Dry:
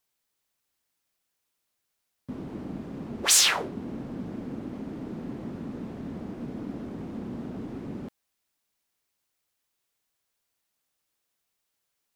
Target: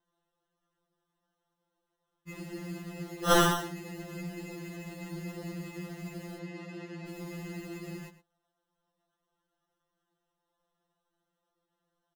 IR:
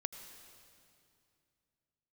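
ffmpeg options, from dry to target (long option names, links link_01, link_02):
-filter_complex "[0:a]acrusher=samples=19:mix=1:aa=0.000001,asettb=1/sr,asplit=3[link_01][link_02][link_03];[link_01]atrim=end=6.384[link_04];[link_02]atrim=start=6.38:end=7.07,asetpts=PTS-STARTPTS,afade=type=in:duration=0.004:curve=qsin,afade=type=out:start_time=0.686:duration=0.004:curve=qsin,highpass=170,lowpass=4600[link_05];[link_03]atrim=start=7.066[link_06];[link_04][link_05]acrossfade=duration=0.004:curve1=hsin:curve2=qsin[link_07];[link_07][link_06]acrossfade=duration=0.004:curve1=qsin:curve2=hsin,asplit=2[link_08][link_09];[link_09]adelay=110.8,volume=-14dB,highshelf=frequency=4000:gain=-2.49[link_10];[link_08][link_10]amix=inputs=2:normalize=0,afftfilt=real='re*2.83*eq(mod(b,8),0)':imag='im*2.83*eq(mod(b,8),0)':win_size=2048:overlap=0.75,volume=-1dB"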